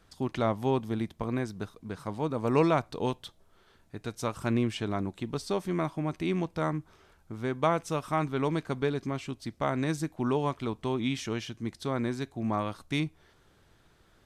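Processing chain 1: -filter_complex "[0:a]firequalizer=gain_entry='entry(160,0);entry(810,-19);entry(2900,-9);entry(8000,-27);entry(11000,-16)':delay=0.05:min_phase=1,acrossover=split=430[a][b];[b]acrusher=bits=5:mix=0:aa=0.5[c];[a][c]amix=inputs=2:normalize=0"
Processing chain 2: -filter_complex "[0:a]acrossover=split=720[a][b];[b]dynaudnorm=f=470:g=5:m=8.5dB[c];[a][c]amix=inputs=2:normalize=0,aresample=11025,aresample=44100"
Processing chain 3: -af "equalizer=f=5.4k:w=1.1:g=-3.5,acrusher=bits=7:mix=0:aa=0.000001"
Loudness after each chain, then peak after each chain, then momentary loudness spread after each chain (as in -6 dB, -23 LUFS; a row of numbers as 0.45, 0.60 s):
-36.5, -28.0, -31.5 LUFS; -19.0, -6.0, -12.0 dBFS; 8, 12, 10 LU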